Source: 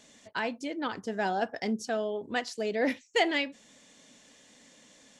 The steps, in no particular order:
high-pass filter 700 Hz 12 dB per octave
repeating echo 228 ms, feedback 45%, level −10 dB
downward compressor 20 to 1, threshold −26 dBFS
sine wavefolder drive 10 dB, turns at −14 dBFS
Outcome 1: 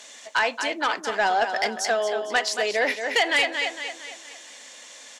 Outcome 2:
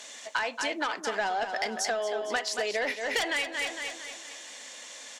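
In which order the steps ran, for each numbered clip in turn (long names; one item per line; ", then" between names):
repeating echo, then downward compressor, then high-pass filter, then sine wavefolder
high-pass filter, then sine wavefolder, then repeating echo, then downward compressor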